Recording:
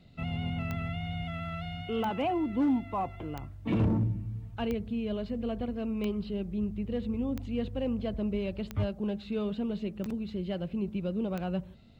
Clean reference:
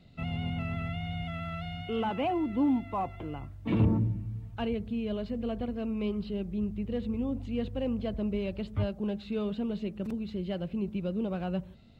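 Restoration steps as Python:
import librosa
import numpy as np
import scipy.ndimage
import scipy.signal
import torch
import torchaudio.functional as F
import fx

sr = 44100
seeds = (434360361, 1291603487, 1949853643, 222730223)

y = fx.fix_declip(x, sr, threshold_db=-21.5)
y = fx.fix_declick_ar(y, sr, threshold=10.0)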